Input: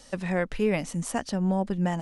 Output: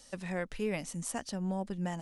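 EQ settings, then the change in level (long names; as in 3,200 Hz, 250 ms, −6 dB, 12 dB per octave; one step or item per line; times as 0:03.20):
high-shelf EQ 4,100 Hz +8 dB
−9.0 dB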